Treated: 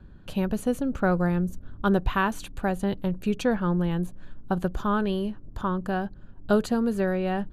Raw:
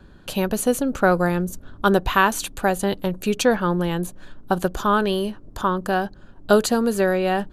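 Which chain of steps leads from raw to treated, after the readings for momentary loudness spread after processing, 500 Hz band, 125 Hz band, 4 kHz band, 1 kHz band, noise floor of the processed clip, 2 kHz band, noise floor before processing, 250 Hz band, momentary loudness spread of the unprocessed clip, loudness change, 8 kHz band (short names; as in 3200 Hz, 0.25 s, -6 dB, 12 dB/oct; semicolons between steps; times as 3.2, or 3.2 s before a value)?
7 LU, -7.0 dB, -1.0 dB, -11.0 dB, -8.0 dB, -46 dBFS, -8.5 dB, -47 dBFS, -2.5 dB, 8 LU, -5.5 dB, -15.5 dB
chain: tone controls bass +9 dB, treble -8 dB; gain -8 dB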